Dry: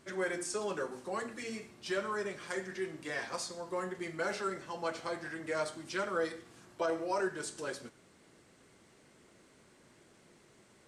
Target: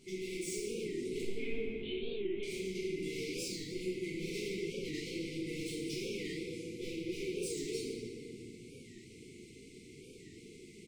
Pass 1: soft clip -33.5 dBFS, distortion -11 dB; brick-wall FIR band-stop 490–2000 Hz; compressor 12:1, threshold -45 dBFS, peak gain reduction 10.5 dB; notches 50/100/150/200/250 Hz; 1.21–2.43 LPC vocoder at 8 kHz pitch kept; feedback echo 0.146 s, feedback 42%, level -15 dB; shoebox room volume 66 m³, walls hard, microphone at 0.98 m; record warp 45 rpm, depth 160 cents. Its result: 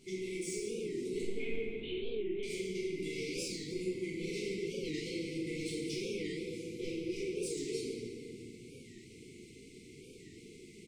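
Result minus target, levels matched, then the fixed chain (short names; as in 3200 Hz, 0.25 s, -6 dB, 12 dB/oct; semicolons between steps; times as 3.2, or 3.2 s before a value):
soft clip: distortion -6 dB
soft clip -42.5 dBFS, distortion -5 dB; brick-wall FIR band-stop 490–2000 Hz; compressor 12:1, threshold -45 dBFS, peak gain reduction 3.5 dB; notches 50/100/150/200/250 Hz; 1.21–2.43 LPC vocoder at 8 kHz pitch kept; feedback echo 0.146 s, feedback 42%, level -15 dB; shoebox room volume 66 m³, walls hard, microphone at 0.98 m; record warp 45 rpm, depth 160 cents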